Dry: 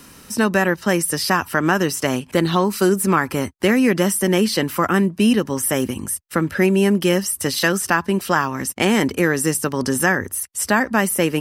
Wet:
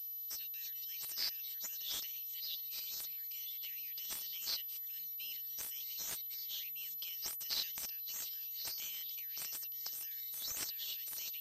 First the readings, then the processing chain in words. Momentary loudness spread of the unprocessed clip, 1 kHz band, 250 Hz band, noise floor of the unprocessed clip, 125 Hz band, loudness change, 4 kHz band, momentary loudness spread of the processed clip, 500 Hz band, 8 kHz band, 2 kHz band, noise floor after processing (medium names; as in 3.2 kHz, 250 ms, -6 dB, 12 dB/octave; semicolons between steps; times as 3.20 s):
6 LU, -39.5 dB, under -40 dB, -45 dBFS, under -40 dB, -20.5 dB, -13.5 dB, 4 LU, under -40 dB, -20.0 dB, -33.5 dB, -45 dBFS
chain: tremolo saw down 3.6 Hz, depth 35%; ever faster or slower copies 180 ms, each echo -6 st, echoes 3, each echo -6 dB; peak limiter -12 dBFS, peak gain reduction 9.5 dB; inverse Chebyshev high-pass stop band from 1.4 kHz, stop band 50 dB; class-D stage that switches slowly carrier 12 kHz; trim -7.5 dB